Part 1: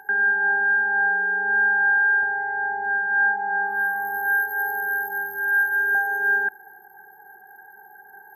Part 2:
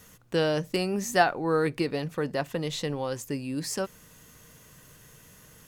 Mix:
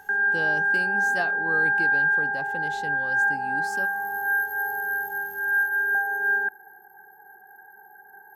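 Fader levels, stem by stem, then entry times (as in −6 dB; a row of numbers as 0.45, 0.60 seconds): −2.5, −8.5 decibels; 0.00, 0.00 seconds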